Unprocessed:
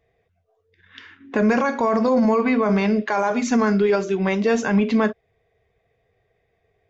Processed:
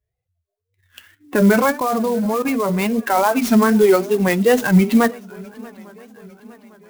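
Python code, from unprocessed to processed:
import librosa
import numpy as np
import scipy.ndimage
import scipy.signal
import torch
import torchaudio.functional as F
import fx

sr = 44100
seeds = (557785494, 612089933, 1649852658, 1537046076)

y = fx.bin_expand(x, sr, power=1.5)
y = fx.level_steps(y, sr, step_db=13, at=(1.78, 2.98), fade=0.02)
y = fx.echo_swing(y, sr, ms=858, ratio=3, feedback_pct=50, wet_db=-24)
y = fx.wow_flutter(y, sr, seeds[0], rate_hz=2.1, depth_cents=140.0)
y = fx.clock_jitter(y, sr, seeds[1], jitter_ms=0.032)
y = y * librosa.db_to_amplitude(7.0)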